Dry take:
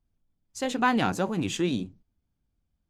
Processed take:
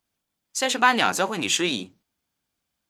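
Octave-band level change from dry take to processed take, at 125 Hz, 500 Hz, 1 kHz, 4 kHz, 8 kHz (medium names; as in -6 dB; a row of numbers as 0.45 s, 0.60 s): -6.0 dB, +2.5 dB, +6.0 dB, +11.5 dB, +12.0 dB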